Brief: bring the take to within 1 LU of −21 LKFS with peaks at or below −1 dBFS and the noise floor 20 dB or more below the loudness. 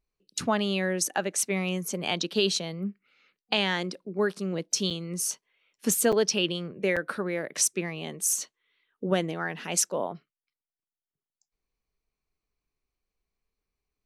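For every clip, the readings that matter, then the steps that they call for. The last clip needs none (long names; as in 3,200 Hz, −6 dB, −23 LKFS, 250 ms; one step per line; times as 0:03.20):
number of dropouts 3; longest dropout 6.1 ms; integrated loudness −28.0 LKFS; sample peak −8.5 dBFS; target loudness −21.0 LKFS
→ repair the gap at 0:04.90/0:06.12/0:06.96, 6.1 ms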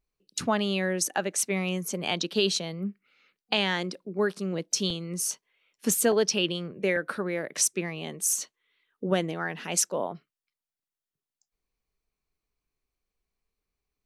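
number of dropouts 0; integrated loudness −28.0 LKFS; sample peak −8.5 dBFS; target loudness −21.0 LKFS
→ level +7 dB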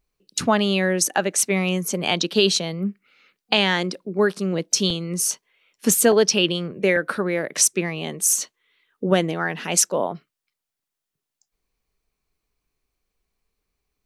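integrated loudness −21.0 LKFS; sample peak −1.5 dBFS; background noise floor −85 dBFS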